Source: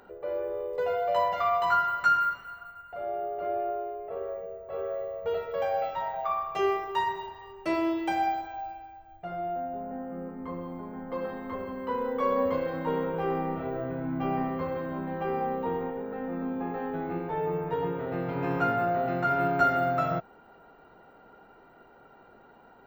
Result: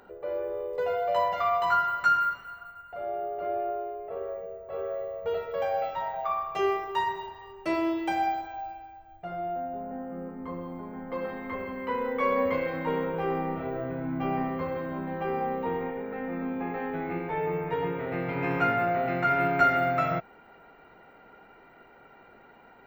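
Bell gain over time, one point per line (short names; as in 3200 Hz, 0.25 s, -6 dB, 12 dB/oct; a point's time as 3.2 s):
bell 2200 Hz 0.54 oct
10.7 s +1 dB
11.65 s +12 dB
12.66 s +12 dB
13.28 s +4 dB
15.4 s +4 dB
15.96 s +12 dB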